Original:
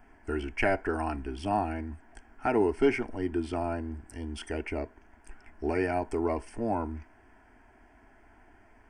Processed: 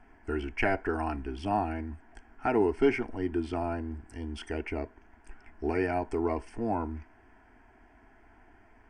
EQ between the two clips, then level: air absorption 52 m; notch 580 Hz, Q 12; 0.0 dB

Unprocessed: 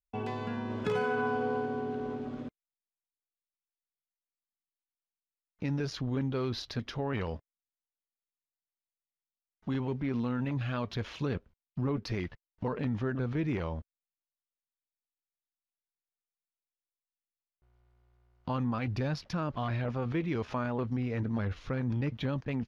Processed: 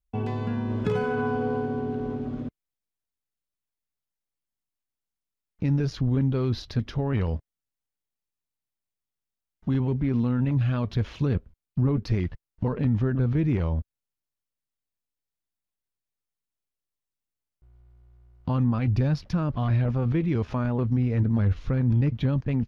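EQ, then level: low shelf 130 Hz +7 dB; low shelf 360 Hz +8 dB; 0.0 dB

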